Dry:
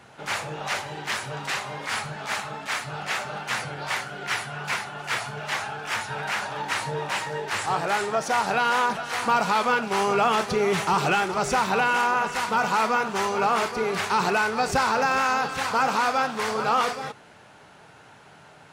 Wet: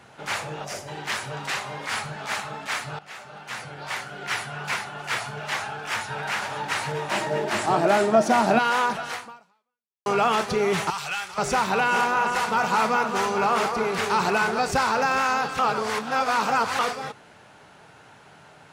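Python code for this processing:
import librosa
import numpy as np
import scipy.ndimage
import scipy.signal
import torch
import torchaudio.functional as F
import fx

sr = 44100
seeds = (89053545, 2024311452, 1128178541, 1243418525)

y = fx.spec_box(x, sr, start_s=0.65, length_s=0.23, low_hz=750.0, high_hz=4600.0, gain_db=-11)
y = fx.echo_throw(y, sr, start_s=5.72, length_s=0.68, ms=520, feedback_pct=60, wet_db=-9.5)
y = fx.small_body(y, sr, hz=(230.0, 330.0, 620.0), ring_ms=70, db=16, at=(7.11, 8.59))
y = fx.tone_stack(y, sr, knobs='10-0-10', at=(10.9, 11.38))
y = fx.echo_alternate(y, sr, ms=215, hz=1400.0, feedback_pct=55, wet_db=-6.5, at=(11.9, 14.59), fade=0.02)
y = fx.edit(y, sr, fx.fade_in_from(start_s=2.99, length_s=1.43, floor_db=-16.5),
    fx.fade_out_span(start_s=9.11, length_s=0.95, curve='exp'),
    fx.reverse_span(start_s=15.59, length_s=1.2), tone=tone)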